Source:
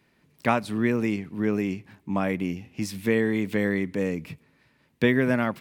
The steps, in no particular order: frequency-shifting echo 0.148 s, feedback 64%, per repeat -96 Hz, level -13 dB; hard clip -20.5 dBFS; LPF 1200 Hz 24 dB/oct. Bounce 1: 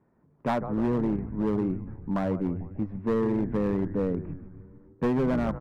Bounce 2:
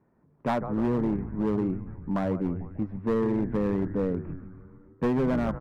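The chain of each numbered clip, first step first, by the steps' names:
LPF > frequency-shifting echo > hard clip; frequency-shifting echo > LPF > hard clip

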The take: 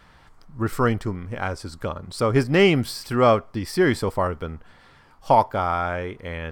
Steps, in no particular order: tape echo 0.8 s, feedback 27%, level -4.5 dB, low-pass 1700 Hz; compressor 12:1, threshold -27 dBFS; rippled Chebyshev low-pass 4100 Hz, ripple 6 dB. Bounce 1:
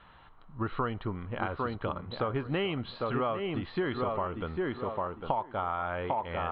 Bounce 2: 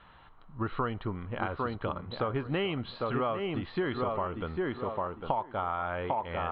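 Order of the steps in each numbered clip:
tape echo > rippled Chebyshev low-pass > compressor; rippled Chebyshev low-pass > tape echo > compressor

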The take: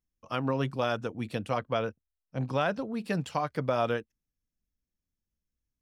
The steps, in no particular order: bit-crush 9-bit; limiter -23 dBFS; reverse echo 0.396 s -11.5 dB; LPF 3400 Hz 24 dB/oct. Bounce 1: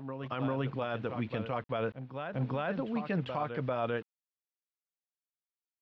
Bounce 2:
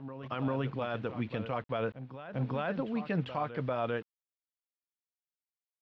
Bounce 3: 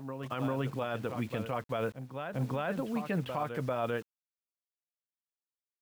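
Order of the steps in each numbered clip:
bit-crush > LPF > reverse echo > limiter; limiter > bit-crush > reverse echo > LPF; LPF > bit-crush > reverse echo > limiter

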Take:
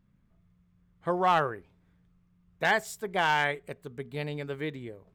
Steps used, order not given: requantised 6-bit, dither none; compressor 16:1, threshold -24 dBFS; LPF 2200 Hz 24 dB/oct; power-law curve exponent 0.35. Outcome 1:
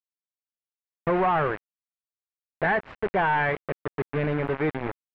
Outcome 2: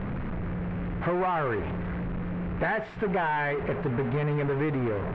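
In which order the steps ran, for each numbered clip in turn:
requantised > compressor > power-law curve > LPF; power-law curve > requantised > compressor > LPF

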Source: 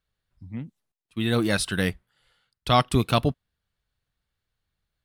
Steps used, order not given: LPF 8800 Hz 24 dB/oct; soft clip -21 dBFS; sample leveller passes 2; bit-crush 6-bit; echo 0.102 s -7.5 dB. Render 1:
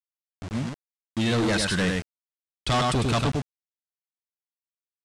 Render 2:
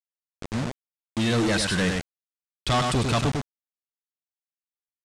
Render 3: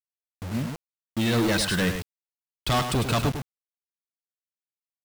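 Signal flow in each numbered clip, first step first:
echo > sample leveller > soft clip > bit-crush > LPF; soft clip > echo > bit-crush > sample leveller > LPF; soft clip > LPF > sample leveller > echo > bit-crush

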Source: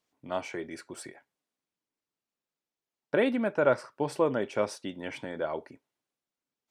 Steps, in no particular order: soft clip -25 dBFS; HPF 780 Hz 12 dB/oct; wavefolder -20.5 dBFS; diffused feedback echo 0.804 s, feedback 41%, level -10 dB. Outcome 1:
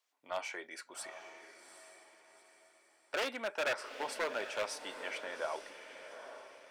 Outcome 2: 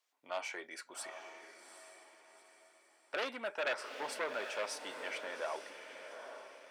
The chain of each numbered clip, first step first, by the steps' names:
wavefolder > HPF > soft clip > diffused feedback echo; wavefolder > diffused feedback echo > soft clip > HPF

